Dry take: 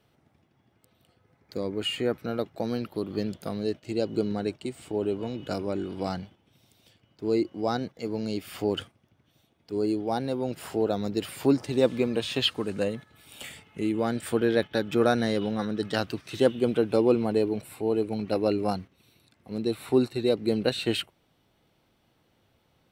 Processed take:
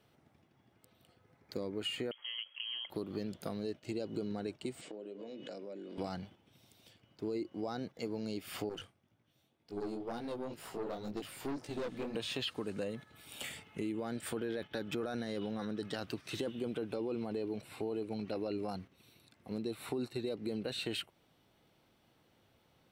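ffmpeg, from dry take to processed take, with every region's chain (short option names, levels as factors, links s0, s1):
-filter_complex "[0:a]asettb=1/sr,asplit=3[s0][s1][s2];[s0]atrim=end=2.114[s3];[s1]atrim=start=2.11:end=2.9,asetpts=PTS-STARTPTS,afade=t=in:d=0.004:c=qsin,afade=t=out:st=0.786:d=0.004:c=qsin,acompressor=threshold=0.0126:ratio=2.5:attack=3.2:release=140:knee=1:detection=peak,lowpass=f=2900:t=q:w=0.5098,lowpass=f=2900:t=q:w=0.6013,lowpass=f=2900:t=q:w=0.9,lowpass=f=2900:t=q:w=2.563,afreqshift=-3400[s4];[s2]atrim=start=2.896[s5];[s3][s4]acrossfade=d=0.004:c1=hsin:c2=qsin[s6];[s6][s5]acrossfade=d=0.004:c1=qsin:c2=hsin,asettb=1/sr,asplit=3[s7][s8][s9];[s7]atrim=end=4.814[s10];[s8]atrim=start=4.81:end=5.98,asetpts=PTS-STARTPTS,afade=t=in:d=0.004:c=qsin,afade=t=out:st=1.166:d=0.004:c=qsin,highpass=f=180:w=0.5412,highpass=f=180:w=1.3066,equalizer=f=540:t=q:w=4:g=8,equalizer=f=870:t=q:w=4:g=-7,equalizer=f=1300:t=q:w=4:g=-6,equalizer=f=1900:t=q:w=4:g=3,lowpass=f=8000:w=0.5412,lowpass=f=8000:w=1.3066,bandreject=f=60:t=h:w=6,bandreject=f=120:t=h:w=6,bandreject=f=180:t=h:w=6,bandreject=f=240:t=h:w=6,bandreject=f=300:t=h:w=6,bandreject=f=360:t=h:w=6,bandreject=f=420:t=h:w=6,acompressor=threshold=0.01:ratio=12:attack=3.2:release=140:knee=1:detection=peak[s11];[s9]atrim=start=5.976[s12];[s10][s11]acrossfade=d=0.004:c1=hsin:c2=qsin[s13];[s13][s12]acrossfade=d=0.004:c1=qsin:c2=hsin,asettb=1/sr,asplit=3[s14][s15][s16];[s14]atrim=end=8.694[s17];[s15]atrim=start=8.69:end=12.15,asetpts=PTS-STARTPTS,afade=t=in:d=0.004:c=qsin,afade=t=out:st=3.456:d=0.004:c=qsin,flanger=delay=17.5:depth=5.8:speed=2,aeval=exprs='(tanh(25.1*val(0)+0.65)-tanh(0.65))/25.1':c=same[s18];[s16]atrim=start=12.146[s19];[s17][s18]acrossfade=d=0.004:c1=hsin:c2=qsin[s20];[s20][s19]acrossfade=d=0.004:c1=qsin:c2=hsin,asettb=1/sr,asplit=3[s21][s22][s23];[s21]atrim=end=16.944[s24];[s22]atrim=start=16.94:end=18.69,asetpts=PTS-STARTPTS,afade=t=in:d=0.004:c=qsin,afade=t=out:st=1.746:d=0.004:c=qsin,acrossover=split=5200[s25][s26];[s26]acompressor=threshold=0.00126:ratio=4:attack=1:release=60[s27];[s25][s27]amix=inputs=2:normalize=0,equalizer=f=4800:t=o:w=1.6:g=3[s28];[s23]atrim=start=18.686[s29];[s24][s28]acrossfade=d=0.004:c1=hsin:c2=qsin[s30];[s30][s29]acrossfade=d=0.004:c1=qsin:c2=hsin,lowshelf=f=83:g=-5.5,alimiter=limit=0.106:level=0:latency=1:release=16,acompressor=threshold=0.0178:ratio=3,volume=0.841"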